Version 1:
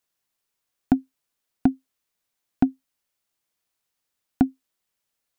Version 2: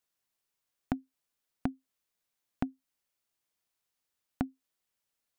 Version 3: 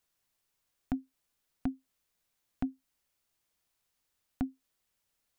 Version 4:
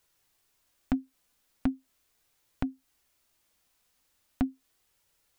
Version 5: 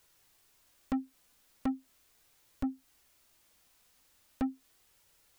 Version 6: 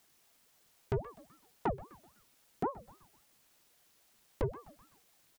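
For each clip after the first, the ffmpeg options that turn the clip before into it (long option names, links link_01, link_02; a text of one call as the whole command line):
ffmpeg -i in.wav -af "acompressor=threshold=-25dB:ratio=6,volume=-4.5dB" out.wav
ffmpeg -i in.wav -af "lowshelf=frequency=89:gain=9.5,alimiter=level_in=0.5dB:limit=-24dB:level=0:latency=1:release=21,volume=-0.5dB,volume=4dB" out.wav
ffmpeg -i in.wav -filter_complex "[0:a]asplit=2[link_01][link_02];[link_02]acompressor=threshold=-40dB:ratio=6,volume=-1dB[link_03];[link_01][link_03]amix=inputs=2:normalize=0,flanger=delay=2:depth=2.1:regen=-57:speed=0.39:shape=triangular,volume=6.5dB" out.wav
ffmpeg -i in.wav -af "asoftclip=type=tanh:threshold=-32dB,volume=5dB" out.wav
ffmpeg -i in.wav -filter_complex "[0:a]asplit=5[link_01][link_02][link_03][link_04][link_05];[link_02]adelay=126,afreqshift=86,volume=-17.5dB[link_06];[link_03]adelay=252,afreqshift=172,volume=-24.6dB[link_07];[link_04]adelay=378,afreqshift=258,volume=-31.8dB[link_08];[link_05]adelay=504,afreqshift=344,volume=-38.9dB[link_09];[link_01][link_06][link_07][link_08][link_09]amix=inputs=5:normalize=0,aeval=exprs='val(0)*sin(2*PI*480*n/s+480*0.75/3.7*sin(2*PI*3.7*n/s))':channel_layout=same,volume=2dB" out.wav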